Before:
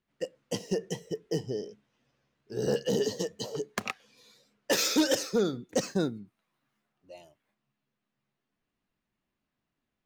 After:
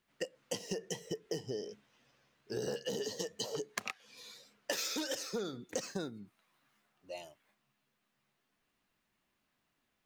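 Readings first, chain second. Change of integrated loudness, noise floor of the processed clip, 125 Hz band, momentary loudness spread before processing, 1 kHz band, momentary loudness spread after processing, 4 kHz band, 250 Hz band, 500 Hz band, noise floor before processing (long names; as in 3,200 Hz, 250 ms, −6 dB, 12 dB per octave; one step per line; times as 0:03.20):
−9.0 dB, −81 dBFS, −10.5 dB, 14 LU, −8.0 dB, 15 LU, −6.5 dB, −11.5 dB, −9.0 dB, −85 dBFS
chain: low-shelf EQ 490 Hz −8.5 dB
downward compressor 8 to 1, threshold −42 dBFS, peak gain reduction 17.5 dB
level +7 dB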